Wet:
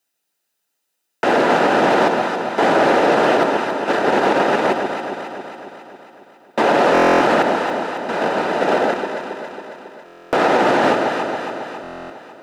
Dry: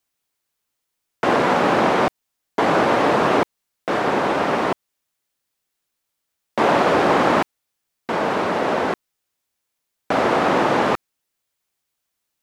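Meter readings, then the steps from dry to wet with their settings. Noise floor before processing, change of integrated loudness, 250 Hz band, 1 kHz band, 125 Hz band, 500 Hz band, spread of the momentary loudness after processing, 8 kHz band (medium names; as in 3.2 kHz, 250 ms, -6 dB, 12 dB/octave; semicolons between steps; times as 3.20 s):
-79 dBFS, +2.5 dB, +2.5 dB, +2.5 dB, -1.5 dB, +4.0 dB, 17 LU, +2.5 dB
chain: comb of notches 1.1 kHz; in parallel at -1.5 dB: level held to a coarse grid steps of 21 dB; on the sum: high-pass 220 Hz 6 dB/octave; on a send: echo whose repeats swap between lows and highs 137 ms, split 900 Hz, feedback 77%, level -4.5 dB; on the sum: loudness maximiser +5 dB; buffer glitch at 6.93/10.05/11.82 s, samples 1024, times 11; loudspeaker Doppler distortion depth 0.11 ms; trim -4.5 dB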